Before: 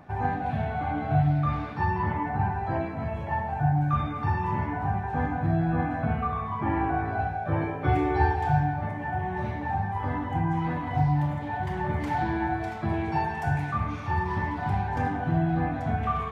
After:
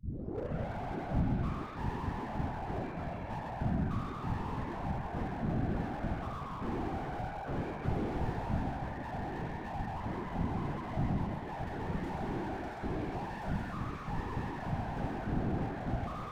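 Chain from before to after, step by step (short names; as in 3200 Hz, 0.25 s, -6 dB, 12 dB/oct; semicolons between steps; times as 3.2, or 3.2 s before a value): tape start at the beginning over 0.69 s; whisperiser; on a send: thin delay 0.131 s, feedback 59%, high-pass 1400 Hz, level -3.5 dB; on the sum: slew limiter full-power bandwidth 22 Hz; gain -7.5 dB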